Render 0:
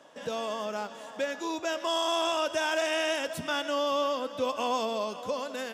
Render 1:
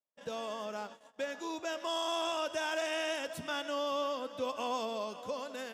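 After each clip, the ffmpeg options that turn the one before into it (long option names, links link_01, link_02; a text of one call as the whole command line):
ffmpeg -i in.wav -af "agate=range=-40dB:threshold=-41dB:ratio=16:detection=peak,volume=-6dB" out.wav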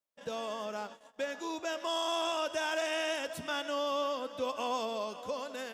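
ffmpeg -i in.wav -af "asubboost=boost=4.5:cutoff=51,volume=1.5dB" out.wav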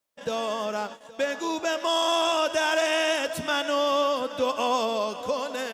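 ffmpeg -i in.wav -af "aecho=1:1:820:0.112,volume=9dB" out.wav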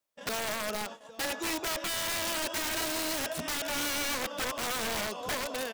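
ffmpeg -i in.wav -af "alimiter=limit=-17dB:level=0:latency=1:release=97,aeval=exprs='(mod(15*val(0)+1,2)-1)/15':channel_layout=same,volume=-3.5dB" out.wav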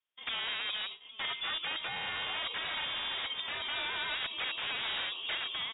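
ffmpeg -i in.wav -af "lowpass=frequency=3200:width_type=q:width=0.5098,lowpass=frequency=3200:width_type=q:width=0.6013,lowpass=frequency=3200:width_type=q:width=0.9,lowpass=frequency=3200:width_type=q:width=2.563,afreqshift=-3800,volume=-1.5dB" out.wav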